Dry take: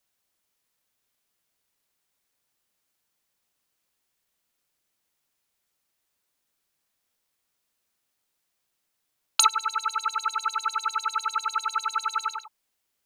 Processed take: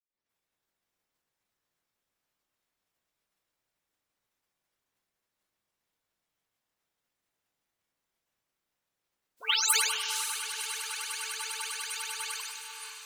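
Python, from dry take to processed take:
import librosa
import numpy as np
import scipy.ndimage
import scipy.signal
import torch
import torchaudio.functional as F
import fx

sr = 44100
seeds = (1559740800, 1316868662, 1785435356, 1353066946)

p1 = fx.spec_delay(x, sr, highs='late', ms=295)
p2 = fx.high_shelf(p1, sr, hz=2500.0, db=9.0)
p3 = fx.spec_gate(p2, sr, threshold_db=-15, keep='weak')
p4 = fx.vibrato(p3, sr, rate_hz=0.36, depth_cents=5.1)
p5 = fx.quant_float(p4, sr, bits=2)
p6 = p4 + (p5 * librosa.db_to_amplitude(-11.0))
p7 = fx.echo_diffused(p6, sr, ms=541, feedback_pct=47, wet_db=-6.0)
y = fx.sustainer(p7, sr, db_per_s=41.0)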